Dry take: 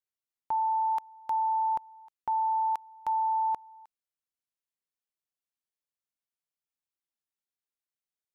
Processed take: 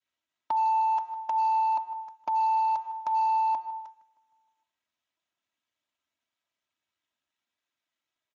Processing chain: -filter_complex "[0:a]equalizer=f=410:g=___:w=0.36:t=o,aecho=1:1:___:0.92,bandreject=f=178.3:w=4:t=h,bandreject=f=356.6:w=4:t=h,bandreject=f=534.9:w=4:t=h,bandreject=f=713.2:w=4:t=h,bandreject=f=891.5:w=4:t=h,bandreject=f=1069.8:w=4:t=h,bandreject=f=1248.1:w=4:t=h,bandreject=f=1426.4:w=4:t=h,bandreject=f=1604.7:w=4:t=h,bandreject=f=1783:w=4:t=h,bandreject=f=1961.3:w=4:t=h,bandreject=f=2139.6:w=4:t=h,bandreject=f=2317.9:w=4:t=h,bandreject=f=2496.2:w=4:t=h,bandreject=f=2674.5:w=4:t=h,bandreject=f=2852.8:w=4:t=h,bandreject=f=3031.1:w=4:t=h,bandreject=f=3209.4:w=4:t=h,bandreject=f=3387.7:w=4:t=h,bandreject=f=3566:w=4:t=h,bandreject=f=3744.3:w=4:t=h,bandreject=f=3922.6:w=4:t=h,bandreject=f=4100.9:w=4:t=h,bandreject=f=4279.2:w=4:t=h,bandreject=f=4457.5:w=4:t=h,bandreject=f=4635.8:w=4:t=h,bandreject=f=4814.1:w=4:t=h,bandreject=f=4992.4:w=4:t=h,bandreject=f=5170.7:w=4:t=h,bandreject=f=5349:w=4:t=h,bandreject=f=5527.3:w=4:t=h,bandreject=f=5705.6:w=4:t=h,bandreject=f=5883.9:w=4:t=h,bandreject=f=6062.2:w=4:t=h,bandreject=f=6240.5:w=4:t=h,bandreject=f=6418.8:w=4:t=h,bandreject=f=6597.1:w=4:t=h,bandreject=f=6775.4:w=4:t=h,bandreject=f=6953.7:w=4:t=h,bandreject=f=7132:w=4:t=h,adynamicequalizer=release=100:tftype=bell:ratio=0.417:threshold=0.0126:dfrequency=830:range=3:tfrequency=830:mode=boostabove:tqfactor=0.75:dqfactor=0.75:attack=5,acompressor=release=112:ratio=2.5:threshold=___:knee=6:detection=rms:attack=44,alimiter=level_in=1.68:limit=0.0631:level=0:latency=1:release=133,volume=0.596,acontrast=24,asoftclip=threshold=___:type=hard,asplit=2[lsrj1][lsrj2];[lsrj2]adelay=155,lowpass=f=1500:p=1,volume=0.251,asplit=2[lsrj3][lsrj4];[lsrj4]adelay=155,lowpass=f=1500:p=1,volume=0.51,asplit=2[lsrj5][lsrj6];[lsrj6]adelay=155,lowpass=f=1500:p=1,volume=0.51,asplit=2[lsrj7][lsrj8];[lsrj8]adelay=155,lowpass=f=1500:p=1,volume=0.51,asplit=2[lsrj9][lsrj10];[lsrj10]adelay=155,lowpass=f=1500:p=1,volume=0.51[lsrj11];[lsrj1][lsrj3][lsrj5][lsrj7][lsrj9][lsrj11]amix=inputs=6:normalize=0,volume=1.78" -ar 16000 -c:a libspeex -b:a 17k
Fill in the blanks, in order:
-11.5, 3.1, 0.00794, 0.0447